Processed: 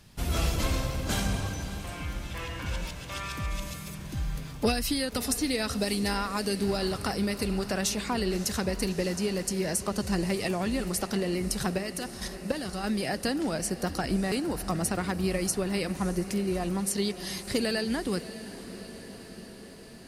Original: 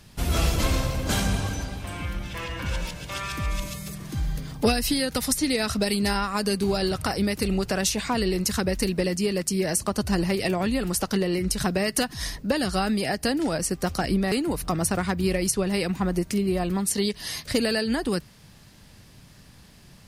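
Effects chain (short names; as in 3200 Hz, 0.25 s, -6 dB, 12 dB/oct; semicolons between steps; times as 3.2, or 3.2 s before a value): 11.78–12.84 level quantiser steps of 10 dB; diffused feedback echo 0.607 s, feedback 70%, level -14 dB; gain -4.5 dB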